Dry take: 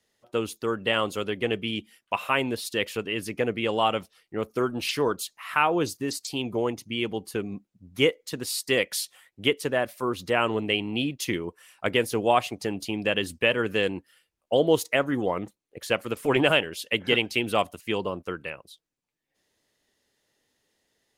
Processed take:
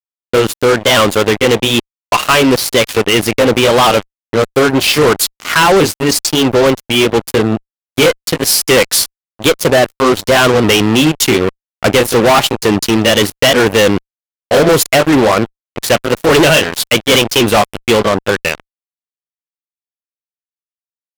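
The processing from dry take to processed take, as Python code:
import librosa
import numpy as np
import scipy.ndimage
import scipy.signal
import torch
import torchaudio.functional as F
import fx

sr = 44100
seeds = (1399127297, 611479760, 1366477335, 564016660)

y = fx.pitch_ramps(x, sr, semitones=2.0, every_ms=967)
y = fx.fuzz(y, sr, gain_db=32.0, gate_db=-38.0)
y = F.gain(torch.from_numpy(y), 7.5).numpy()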